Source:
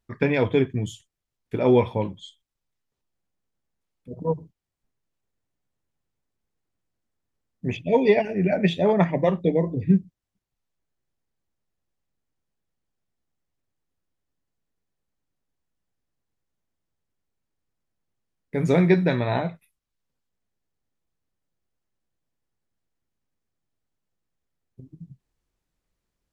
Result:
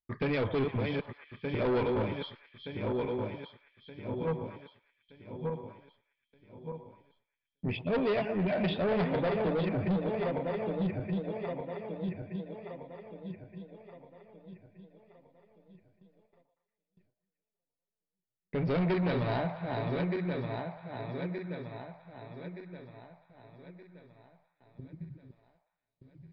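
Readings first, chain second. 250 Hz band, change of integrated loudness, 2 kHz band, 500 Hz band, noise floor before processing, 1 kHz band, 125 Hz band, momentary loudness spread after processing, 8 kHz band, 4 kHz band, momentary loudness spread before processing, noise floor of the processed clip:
-7.5 dB, -10.5 dB, -6.0 dB, -7.5 dB, -83 dBFS, -5.5 dB, -6.5 dB, 20 LU, no reading, -4.0 dB, 13 LU, under -85 dBFS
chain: backward echo that repeats 611 ms, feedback 63%, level -7 dB; gate with hold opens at -54 dBFS; in parallel at -1 dB: compression, threshold -27 dBFS, peak gain reduction 14 dB; on the sum: saturation -19 dBFS, distortion -8 dB; on a send: repeats whose band climbs or falls 117 ms, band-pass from 770 Hz, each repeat 0.7 oct, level -8 dB; on the sum: resampled via 11.025 kHz; trim -6.5 dB

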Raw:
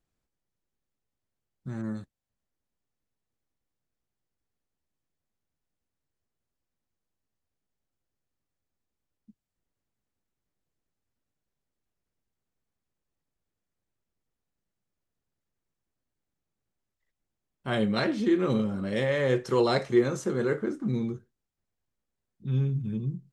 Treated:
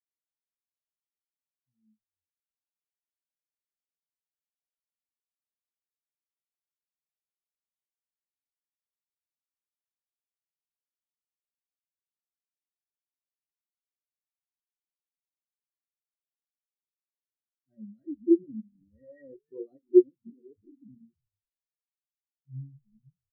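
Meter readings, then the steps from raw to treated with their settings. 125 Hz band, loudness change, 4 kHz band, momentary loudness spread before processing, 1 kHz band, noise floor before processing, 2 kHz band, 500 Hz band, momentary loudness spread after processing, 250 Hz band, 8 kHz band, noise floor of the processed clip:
under -15 dB, +3.5 dB, under -40 dB, 14 LU, under -40 dB, under -85 dBFS, under -35 dB, -2.5 dB, 22 LU, -2.0 dB, under -25 dB, under -85 dBFS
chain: small resonant body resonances 280/1900/2700 Hz, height 12 dB, ringing for 95 ms; frequency-shifting echo 307 ms, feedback 46%, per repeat -130 Hz, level -9 dB; spectral contrast expander 4:1; trim +1.5 dB

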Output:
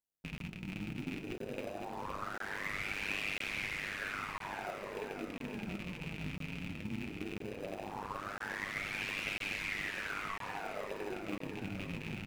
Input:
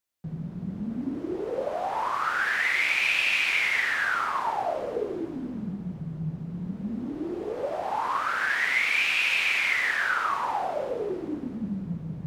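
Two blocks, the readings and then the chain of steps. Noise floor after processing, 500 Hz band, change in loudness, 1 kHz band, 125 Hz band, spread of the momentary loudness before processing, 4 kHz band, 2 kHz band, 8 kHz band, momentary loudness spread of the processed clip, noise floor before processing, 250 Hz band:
-47 dBFS, -11.5 dB, -13.5 dB, -14.5 dB, -8.0 dB, 12 LU, -12.5 dB, -14.0 dB, -9.5 dB, 6 LU, -39 dBFS, -9.5 dB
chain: rattle on loud lows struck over -38 dBFS, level -20 dBFS; on a send: feedback delay 511 ms, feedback 52%, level -7 dB; on the sum: AM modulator 100 Hz, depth 85%; bass shelf 500 Hz +6.5 dB; flange 0.19 Hz, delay 4 ms, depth 6.9 ms, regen -46%; treble shelf 4.5 kHz +8 dB; flange 1.7 Hz, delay 8.6 ms, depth 1.2 ms, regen -73%; in parallel at -10 dB: sample-and-hold 40×; on the sum: crackling interface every 1.00 s, samples 1024, zero, from 0.38 s; trim -5 dB

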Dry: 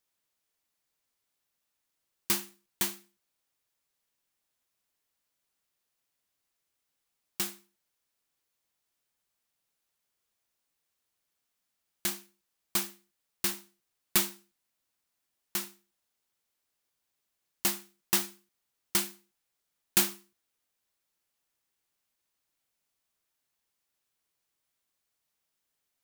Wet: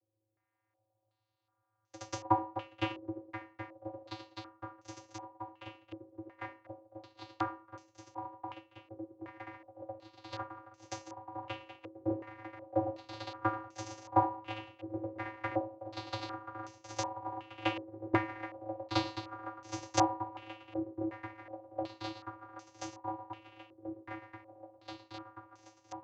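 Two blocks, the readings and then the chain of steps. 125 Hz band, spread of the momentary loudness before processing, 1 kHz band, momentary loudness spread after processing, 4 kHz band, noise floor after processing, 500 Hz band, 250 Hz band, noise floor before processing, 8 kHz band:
+8.5 dB, 16 LU, +12.5 dB, 18 LU, -7.5 dB, -83 dBFS, +10.0 dB, +6.5 dB, -83 dBFS, -14.5 dB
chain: bit-reversed sample order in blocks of 64 samples; ever faster or slower copies 189 ms, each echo +3 st, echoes 3, each echo -6 dB; bass shelf 290 Hz +8 dB; shuffle delay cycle 1033 ms, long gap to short 3:1, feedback 79%, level -11 dB; vocoder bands 16, square 108 Hz; peaking EQ 820 Hz +13 dB 1.2 oct; Schroeder reverb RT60 0.43 s, combs from 30 ms, DRR 17 dB; step-sequenced low-pass 2.7 Hz 430–6100 Hz; trim -4.5 dB

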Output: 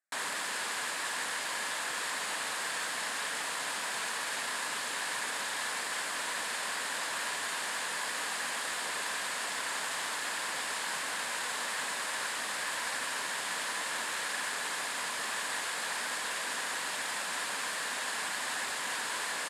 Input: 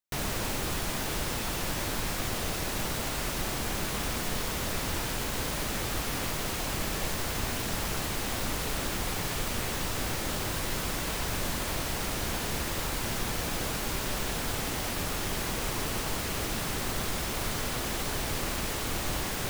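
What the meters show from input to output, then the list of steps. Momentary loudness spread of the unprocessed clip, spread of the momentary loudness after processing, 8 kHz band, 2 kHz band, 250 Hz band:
0 LU, 0 LU, -1.0 dB, +3.0 dB, -16.0 dB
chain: static phaser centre 650 Hz, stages 8; on a send: delay 241 ms -5 dB; on the sum: integer overflow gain 31.5 dB; cabinet simulation 300–9200 Hz, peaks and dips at 350 Hz -7 dB, 1 kHz +7 dB, 1.7 kHz +9 dB, 5.9 kHz -8 dB; trim +3.5 dB

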